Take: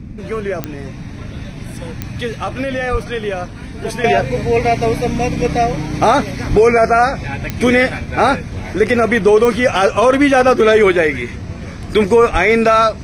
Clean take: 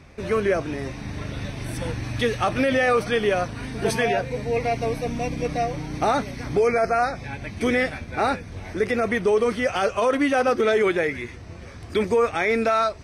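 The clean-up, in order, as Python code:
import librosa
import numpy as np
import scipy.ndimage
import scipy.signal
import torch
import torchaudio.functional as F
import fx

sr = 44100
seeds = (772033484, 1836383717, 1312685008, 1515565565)

y = fx.fix_declick_ar(x, sr, threshold=10.0)
y = fx.highpass(y, sr, hz=140.0, slope=24, at=(2.91, 3.03), fade=0.02)
y = fx.highpass(y, sr, hz=140.0, slope=24, at=(6.49, 6.61), fade=0.02)
y = fx.highpass(y, sr, hz=140.0, slope=24, at=(12.32, 12.44), fade=0.02)
y = fx.noise_reduce(y, sr, print_start_s=0.86, print_end_s=1.36, reduce_db=7.0)
y = fx.gain(y, sr, db=fx.steps((0.0, 0.0), (4.04, -9.5)))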